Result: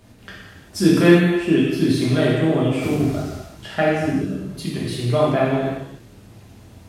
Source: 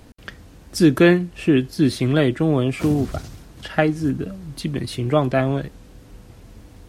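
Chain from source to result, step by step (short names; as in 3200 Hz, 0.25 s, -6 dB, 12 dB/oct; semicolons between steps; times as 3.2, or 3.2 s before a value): low shelf 62 Hz -7 dB; non-linear reverb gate 0.42 s falling, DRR -6.5 dB; gain -6 dB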